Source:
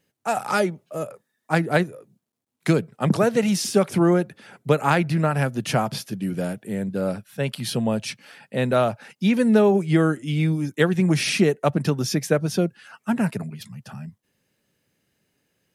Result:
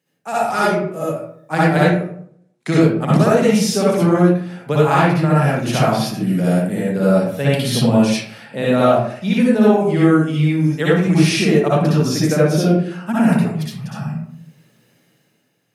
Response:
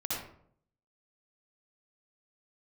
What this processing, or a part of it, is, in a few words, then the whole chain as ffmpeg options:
far laptop microphone: -filter_complex "[1:a]atrim=start_sample=2205[link_01];[0:a][link_01]afir=irnorm=-1:irlink=0,highpass=frequency=120:width=0.5412,highpass=frequency=120:width=1.3066,dynaudnorm=framelen=210:gausssize=7:maxgain=11.5dB,asettb=1/sr,asplit=3[link_02][link_03][link_04];[link_02]atrim=end=1.894[link_05];[link_03]atrim=start=1.89:end=2.81,asetpts=PTS-STARTPTS,afade=type=in:duration=0.004:curve=qsin,afade=type=out:start_time=0.916:duration=0.004:curve=qsin,lowpass=frequency=10000:width=0.5412,lowpass=frequency=10000:width=1.3066[link_06];[link_04]atrim=start=2.806[link_07];[link_05][link_06]acrossfade=duration=0.004:curve1=hsin:curve2=qsin[link_08];[link_08][link_07]acrossfade=duration=0.004:curve1=qsin:curve2=hsin,volume=-1dB"

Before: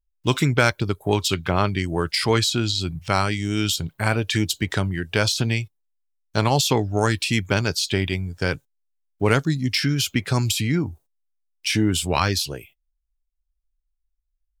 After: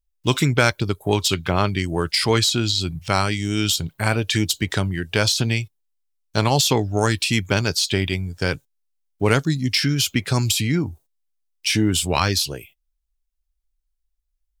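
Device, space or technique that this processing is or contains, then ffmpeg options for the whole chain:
exciter from parts: -filter_complex "[0:a]asplit=2[link_01][link_02];[link_02]highpass=2200,asoftclip=type=tanh:threshold=-20dB,volume=-6.5dB[link_03];[link_01][link_03]amix=inputs=2:normalize=0,volume=1dB"

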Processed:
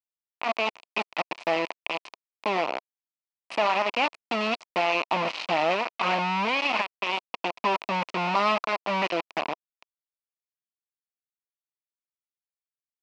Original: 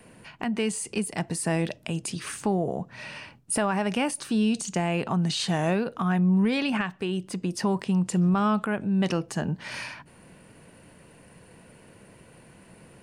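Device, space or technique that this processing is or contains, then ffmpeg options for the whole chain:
hand-held game console: -af "acrusher=bits=3:mix=0:aa=0.000001,highpass=420,equalizer=frequency=430:width_type=q:width=4:gain=-5,equalizer=frequency=680:width_type=q:width=4:gain=4,equalizer=frequency=1000:width_type=q:width=4:gain=6,equalizer=frequency=1600:width_type=q:width=4:gain=-8,equalizer=frequency=2500:width_type=q:width=4:gain=7,equalizer=frequency=3600:width_type=q:width=4:gain=-5,lowpass=frequency=4200:width=0.5412,lowpass=frequency=4200:width=1.3066"

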